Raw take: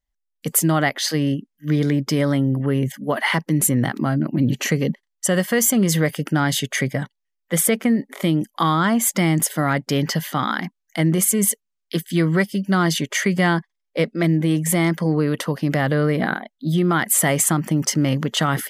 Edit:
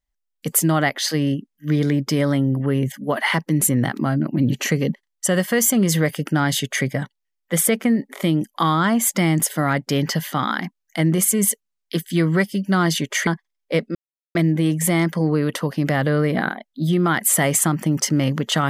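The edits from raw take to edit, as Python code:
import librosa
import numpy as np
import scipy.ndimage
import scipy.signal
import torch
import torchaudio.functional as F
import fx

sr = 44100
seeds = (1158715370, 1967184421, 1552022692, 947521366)

y = fx.edit(x, sr, fx.cut(start_s=13.27, length_s=0.25),
    fx.insert_silence(at_s=14.2, length_s=0.4), tone=tone)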